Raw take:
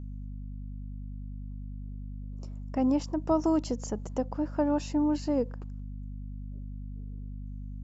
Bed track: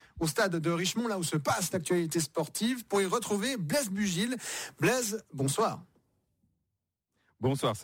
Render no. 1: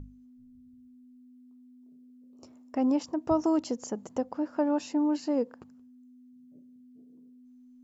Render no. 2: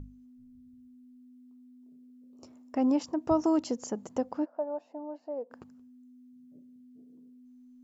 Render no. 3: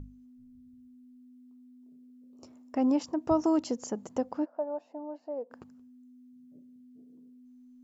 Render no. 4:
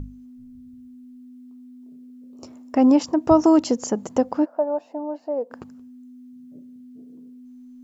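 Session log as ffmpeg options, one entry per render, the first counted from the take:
-af "bandreject=f=50:t=h:w=6,bandreject=f=100:t=h:w=6,bandreject=f=150:t=h:w=6,bandreject=f=200:t=h:w=6"
-filter_complex "[0:a]asplit=3[a][b][c];[a]afade=t=out:st=4.44:d=0.02[d];[b]bandpass=f=660:t=q:w=3.9,afade=t=in:st=4.44:d=0.02,afade=t=out:st=5.5:d=0.02[e];[c]afade=t=in:st=5.5:d=0.02[f];[d][e][f]amix=inputs=3:normalize=0"
-af anull
-af "volume=10.5dB"

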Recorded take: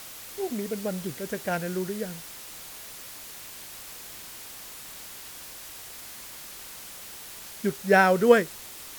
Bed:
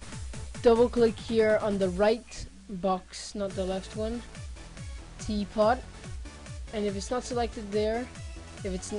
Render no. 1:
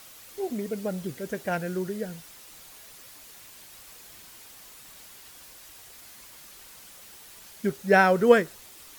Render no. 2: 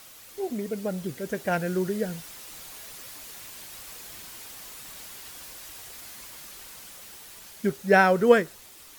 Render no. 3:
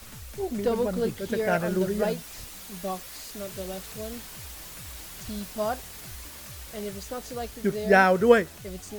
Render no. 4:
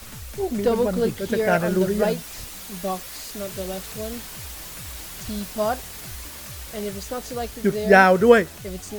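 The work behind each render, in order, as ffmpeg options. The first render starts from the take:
-af "afftdn=nr=7:nf=-43"
-af "dynaudnorm=f=310:g=11:m=5.5dB"
-filter_complex "[1:a]volume=-5dB[a];[0:a][a]amix=inputs=2:normalize=0"
-af "volume=5dB,alimiter=limit=-2dB:level=0:latency=1"

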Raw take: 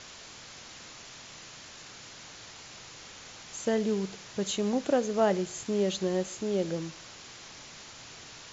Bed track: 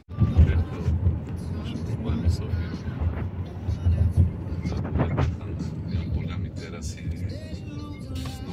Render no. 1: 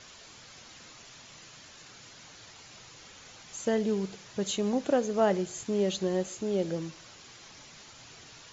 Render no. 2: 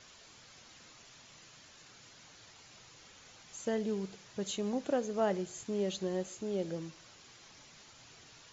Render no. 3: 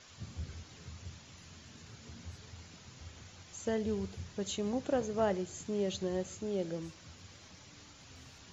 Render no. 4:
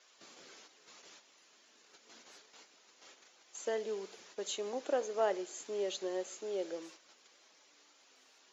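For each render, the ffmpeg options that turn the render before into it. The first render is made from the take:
-af "afftdn=nr=6:nf=-48"
-af "volume=-6dB"
-filter_complex "[1:a]volume=-25dB[a];[0:a][a]amix=inputs=2:normalize=0"
-af "agate=range=-8dB:threshold=-50dB:ratio=16:detection=peak,highpass=f=350:w=0.5412,highpass=f=350:w=1.3066"

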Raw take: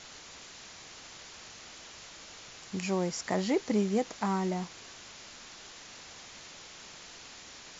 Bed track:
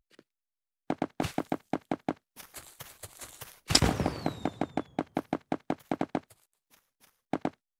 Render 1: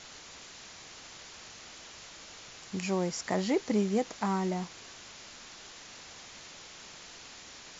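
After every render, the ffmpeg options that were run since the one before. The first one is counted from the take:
-af anull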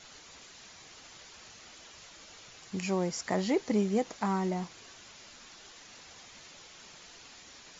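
-af "afftdn=nr=6:nf=-50"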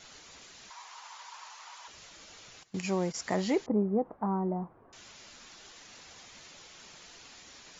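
-filter_complex "[0:a]asettb=1/sr,asplit=3[a][b][c];[a]atrim=end=0.704[d];[b]atrim=start=0.7:end=1.88,asetpts=PTS-STARTPTS,afade=t=in:d=0.004:c=qsin,afade=t=out:st=1.176:d=0.004:c=qsin,highpass=f=960:t=q:w=7.1[e];[c]atrim=start=1.876[f];[d][e]acrossfade=d=0.004:c1=hsin:c2=qsin[g];[g][f]acrossfade=d=0.004:c1=qsin:c2=hsin,asettb=1/sr,asplit=3[h][i][j];[h]atrim=end=2.634[k];[i]atrim=start=2.63:end=3.15,asetpts=PTS-STARTPTS,afade=t=in:d=0.004:c=qsin,afade=t=out:st=0.516:d=0.004:c=qsin,agate=range=-16dB:threshold=-38dB:ratio=16:release=100:detection=peak[l];[j]atrim=start=3.146[m];[k][l]acrossfade=d=0.004:c1=hsin:c2=qsin[n];[n][m]acrossfade=d=0.004:c1=qsin:c2=hsin,asettb=1/sr,asplit=3[o][p][q];[o]atrim=end=3.664[r];[p]atrim=start=3.66:end=4.93,asetpts=PTS-STARTPTS,afade=t=in:d=0.004:c=qsin,afade=t=out:st=1.266:d=0.004:c=qsin,lowpass=f=1.1k:w=0.5412,lowpass=f=1.1k:w=1.3066[s];[q]atrim=start=4.926[t];[r][s]acrossfade=d=0.004:c1=hsin:c2=qsin[u];[u][t]acrossfade=d=0.004:c1=qsin:c2=hsin"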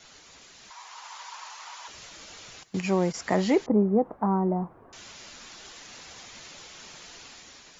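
-filter_complex "[0:a]acrossover=split=120|3100[a][b][c];[c]alimiter=level_in=10.5dB:limit=-24dB:level=0:latency=1:release=418,volume=-10.5dB[d];[a][b][d]amix=inputs=3:normalize=0,dynaudnorm=f=600:g=3:m=6dB"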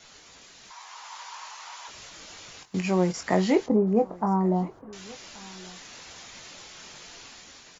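-filter_complex "[0:a]asplit=2[a][b];[b]adelay=22,volume=-8dB[c];[a][c]amix=inputs=2:normalize=0,aecho=1:1:1128:0.0708"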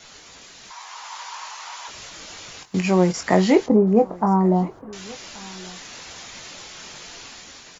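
-af "volume=6dB"

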